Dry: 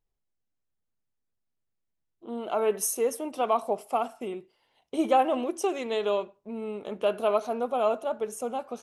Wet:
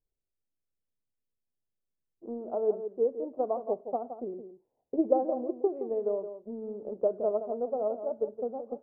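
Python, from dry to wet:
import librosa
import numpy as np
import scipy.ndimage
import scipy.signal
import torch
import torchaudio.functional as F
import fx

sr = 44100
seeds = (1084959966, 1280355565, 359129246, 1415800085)

p1 = fx.transient(x, sr, attack_db=6, sustain_db=0)
p2 = fx.ladder_lowpass(p1, sr, hz=690.0, resonance_pct=30)
y = p2 + fx.echo_single(p2, sr, ms=169, db=-10.0, dry=0)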